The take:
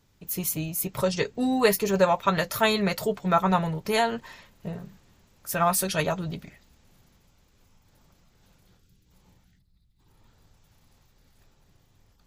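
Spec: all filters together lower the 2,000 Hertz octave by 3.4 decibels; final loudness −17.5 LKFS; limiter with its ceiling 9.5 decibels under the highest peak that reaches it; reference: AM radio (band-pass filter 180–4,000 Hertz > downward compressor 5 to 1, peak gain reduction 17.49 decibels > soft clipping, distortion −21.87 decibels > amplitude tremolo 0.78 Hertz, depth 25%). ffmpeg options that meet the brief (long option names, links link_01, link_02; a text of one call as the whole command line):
ffmpeg -i in.wav -af "equalizer=frequency=2000:width_type=o:gain=-4,alimiter=limit=-16dB:level=0:latency=1,highpass=180,lowpass=4000,acompressor=threshold=-41dB:ratio=5,asoftclip=threshold=-32.5dB,tremolo=f=0.78:d=0.25,volume=28.5dB" out.wav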